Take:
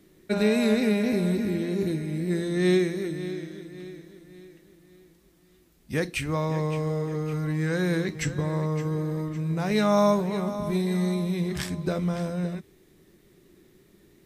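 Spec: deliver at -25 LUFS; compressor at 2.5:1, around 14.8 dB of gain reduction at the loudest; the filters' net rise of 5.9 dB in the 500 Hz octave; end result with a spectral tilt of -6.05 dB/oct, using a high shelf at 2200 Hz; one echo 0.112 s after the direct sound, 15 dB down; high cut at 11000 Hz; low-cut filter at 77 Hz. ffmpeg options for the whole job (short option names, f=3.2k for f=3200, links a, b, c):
-af "highpass=77,lowpass=11k,equalizer=f=500:t=o:g=7.5,highshelf=f=2.2k:g=4.5,acompressor=threshold=-37dB:ratio=2.5,aecho=1:1:112:0.178,volume=10dB"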